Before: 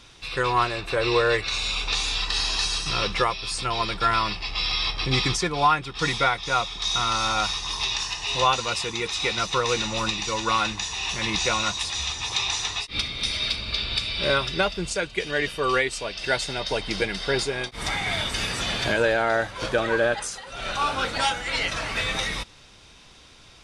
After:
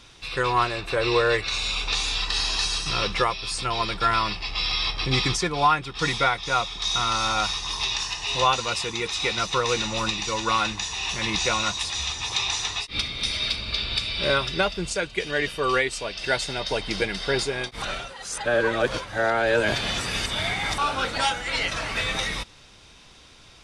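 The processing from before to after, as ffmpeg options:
-filter_complex "[0:a]asplit=3[s0][s1][s2];[s0]atrim=end=17.822[s3];[s1]atrim=start=17.818:end=20.782,asetpts=PTS-STARTPTS,areverse[s4];[s2]atrim=start=20.778[s5];[s3][s4]acrossfade=d=0.004:c1=hsin:c2=hsin[s6];[s6][s5]acrossfade=d=0.004:c1=hsin:c2=hsin"

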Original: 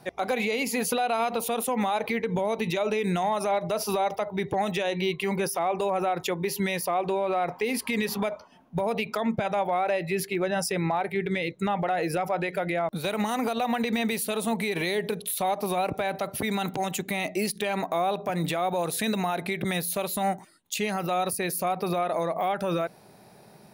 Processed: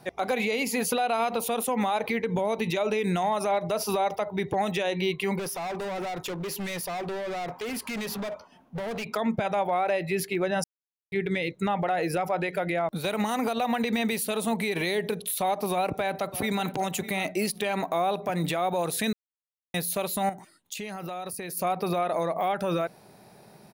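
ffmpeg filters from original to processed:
-filter_complex "[0:a]asettb=1/sr,asplit=3[s0][s1][s2];[s0]atrim=end=5.394[s3];[s1]atrim=start=5.39:end=9.12,asetpts=PTS-STARTPTS,afade=t=in:d=0.004:c=qsin,afade=t=out:st=3.726:d=0.004:c=qsin,volume=33.5,asoftclip=hard,volume=0.0299[s4];[s2]atrim=start=9.116[s5];[s3][s4]acrossfade=d=0.004:c1=hsin:c2=qsin[s6];[s6][s5]acrossfade=d=0.004:c1=qsin:c2=hsin,asplit=2[s7][s8];[s8]afade=t=in:st=15.72:d=0.01,afade=t=out:st=16.68:d=0.01,aecho=0:1:600|1200|1800:0.188365|0.0470912|0.0117728[s9];[s7][s9]amix=inputs=2:normalize=0,asettb=1/sr,asplit=3[s10][s11][s12];[s10]atrim=end=20.294[s13];[s11]atrim=start=20.29:end=21.57,asetpts=PTS-STARTPTS,afade=t=in:d=0.004:c=qsin,afade=t=out:st=1.276:d=0.004:c=qsin,acompressor=threshold=0.0251:ratio=6:attack=3.2:release=140:knee=1:detection=peak[s14];[s12]atrim=start=21.566[s15];[s13][s14]acrossfade=d=0.004:c1=hsin:c2=qsin[s16];[s16][s15]acrossfade=d=0.004:c1=qsin:c2=hsin,asplit=5[s17][s18][s19][s20][s21];[s17]atrim=end=10.64,asetpts=PTS-STARTPTS,afade=t=out:st=10.636:d=0.004:c=hsin[s22];[s18]atrim=start=10.64:end=11.12,asetpts=PTS-STARTPTS,volume=0[s23];[s19]atrim=start=11.12:end=19.13,asetpts=PTS-STARTPTS,afade=t=in:d=0.004:c=hsin,afade=t=out:st=8.006:d=0.004:c=hsin[s24];[s20]atrim=start=19.13:end=19.74,asetpts=PTS-STARTPTS,volume=0[s25];[s21]atrim=start=19.74,asetpts=PTS-STARTPTS,afade=t=in:d=0.004:c=hsin[s26];[s22][s23][s24][s25][s26]concat=n=5:v=0:a=1"

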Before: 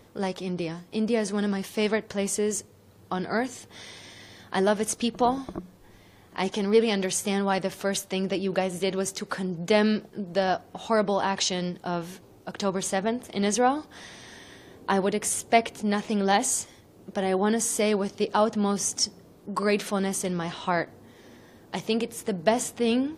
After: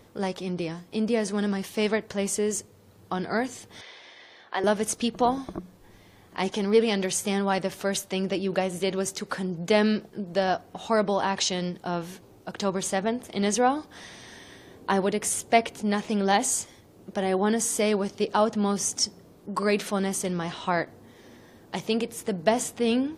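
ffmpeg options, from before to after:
-filter_complex "[0:a]asettb=1/sr,asplit=3[s0][s1][s2];[s0]atrim=end=3.814[s3];[s1]atrim=start=3.81:end=4.64,asetpts=PTS-STARTPTS,afade=t=in:d=0.004:c=qsin,afade=t=out:st=0.826:d=0.004:c=qsin,acrossover=split=380 4700:gain=0.0794 1 0.0631[s4][s5][s6];[s4][s5][s6]amix=inputs=3:normalize=0[s7];[s2]atrim=start=4.636[s8];[s3][s7]acrossfade=d=0.004:c1=hsin:c2=qsin[s9];[s9][s8]acrossfade=d=0.004:c1=qsin:c2=hsin"

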